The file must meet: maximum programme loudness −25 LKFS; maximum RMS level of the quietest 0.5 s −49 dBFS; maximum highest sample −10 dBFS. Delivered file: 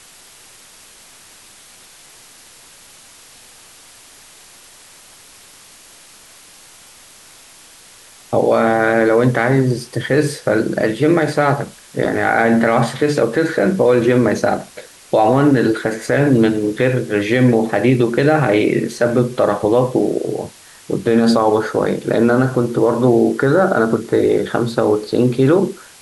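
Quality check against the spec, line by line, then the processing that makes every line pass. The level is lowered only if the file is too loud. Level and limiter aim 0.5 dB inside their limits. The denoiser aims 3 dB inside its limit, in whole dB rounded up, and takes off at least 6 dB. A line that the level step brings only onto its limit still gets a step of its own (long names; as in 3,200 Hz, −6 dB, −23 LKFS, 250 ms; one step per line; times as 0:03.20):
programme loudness −15.5 LKFS: out of spec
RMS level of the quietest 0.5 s −43 dBFS: out of spec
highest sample −3.5 dBFS: out of spec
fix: level −10 dB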